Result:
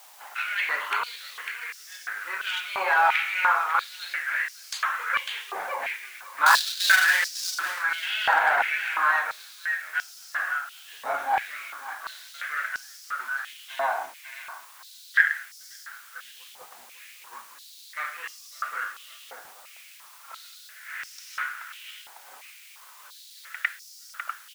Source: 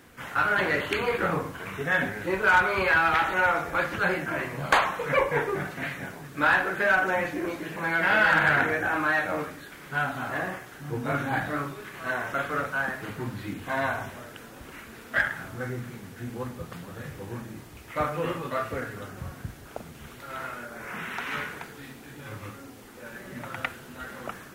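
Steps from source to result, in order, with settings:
0:06.46–0:07.73: each half-wave held at its own peak
downward expander −32 dBFS
bit-depth reduction 8 bits, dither triangular
on a send: repeating echo 550 ms, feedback 15%, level −8.5 dB
on the sum: high-pass on a step sequencer 2.9 Hz 800–5,200 Hz
level −3.5 dB

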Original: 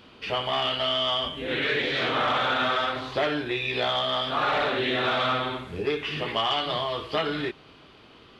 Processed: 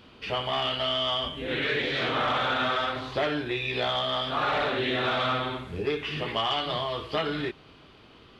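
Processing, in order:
low-shelf EQ 140 Hz +5.5 dB
level −2 dB

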